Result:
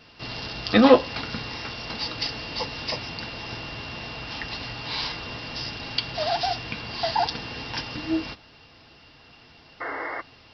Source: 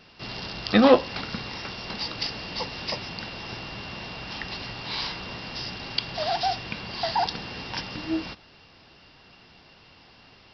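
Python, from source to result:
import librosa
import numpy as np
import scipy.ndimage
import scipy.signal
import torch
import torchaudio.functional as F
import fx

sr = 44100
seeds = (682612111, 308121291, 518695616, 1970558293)

y = fx.spec_paint(x, sr, seeds[0], shape='noise', start_s=9.8, length_s=0.41, low_hz=270.0, high_hz=2200.0, level_db=-33.0)
y = fx.notch_comb(y, sr, f0_hz=190.0)
y = y * librosa.db_to_amplitude(2.5)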